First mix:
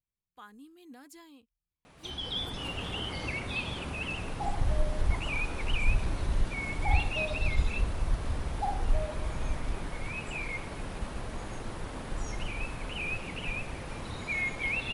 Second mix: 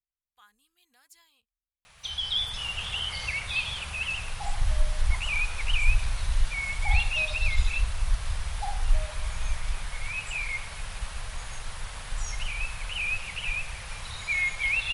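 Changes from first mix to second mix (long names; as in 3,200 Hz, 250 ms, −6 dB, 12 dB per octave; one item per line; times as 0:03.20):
background +9.0 dB
master: add guitar amp tone stack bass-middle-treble 10-0-10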